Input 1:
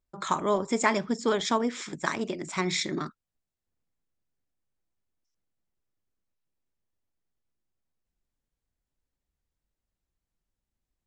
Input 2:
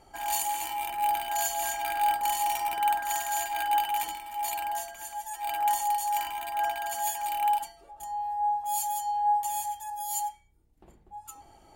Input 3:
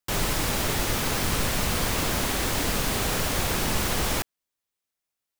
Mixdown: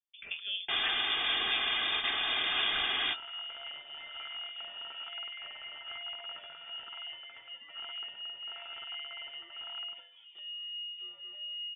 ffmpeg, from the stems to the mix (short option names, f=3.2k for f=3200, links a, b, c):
-filter_complex "[0:a]highshelf=f=8.3k:g=7.5,aecho=1:1:5.2:0.43,adynamicequalizer=threshold=0.00794:dfrequency=2100:dqfactor=0.7:tfrequency=2100:tqfactor=0.7:attack=5:release=100:ratio=0.375:range=2:mode=boostabove:tftype=highshelf,volume=-13.5dB,asplit=2[a][b];[1:a]bandreject=f=850:w=12,acompressor=threshold=-37dB:ratio=6,adelay=2350,volume=-2dB[c];[2:a]aecho=1:1:2.4:0.89,adelay=600,volume=-4.5dB[d];[b]apad=whole_len=264418[e];[d][e]sidechaingate=range=-33dB:threshold=-52dB:ratio=16:detection=peak[f];[a][c][f]amix=inputs=3:normalize=0,highpass=f=100:w=0.5412,highpass=f=100:w=1.3066,lowpass=f=3.1k:t=q:w=0.5098,lowpass=f=3.1k:t=q:w=0.6013,lowpass=f=3.1k:t=q:w=0.9,lowpass=f=3.1k:t=q:w=2.563,afreqshift=-3700"